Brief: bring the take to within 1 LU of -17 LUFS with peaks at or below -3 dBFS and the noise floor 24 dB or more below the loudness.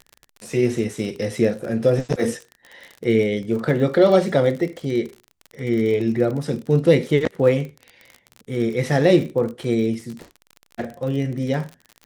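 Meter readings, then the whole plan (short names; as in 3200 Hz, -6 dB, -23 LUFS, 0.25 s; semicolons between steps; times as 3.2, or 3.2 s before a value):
ticks 43/s; loudness -21.0 LUFS; peak -3.0 dBFS; loudness target -17.0 LUFS
-> de-click; gain +4 dB; limiter -3 dBFS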